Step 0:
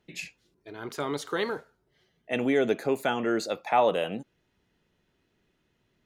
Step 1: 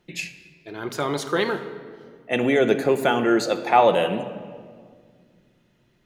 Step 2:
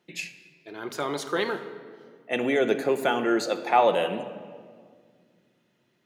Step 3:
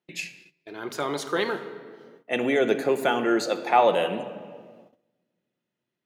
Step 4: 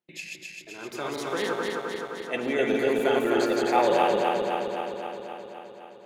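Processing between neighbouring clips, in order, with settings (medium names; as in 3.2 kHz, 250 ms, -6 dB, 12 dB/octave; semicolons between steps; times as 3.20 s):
reverberation RT60 1.9 s, pre-delay 6 ms, DRR 7.5 dB; trim +6 dB
Bessel high-pass 210 Hz, order 2; trim -3.5 dB
gate -52 dBFS, range -16 dB; trim +1 dB
backward echo that repeats 130 ms, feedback 82%, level -1.5 dB; trim -5.5 dB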